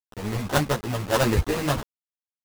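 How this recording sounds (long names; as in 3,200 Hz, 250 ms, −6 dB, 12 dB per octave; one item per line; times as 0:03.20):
aliases and images of a low sample rate 2,300 Hz, jitter 20%
sample-and-hold tremolo
a quantiser's noise floor 6 bits, dither none
a shimmering, thickened sound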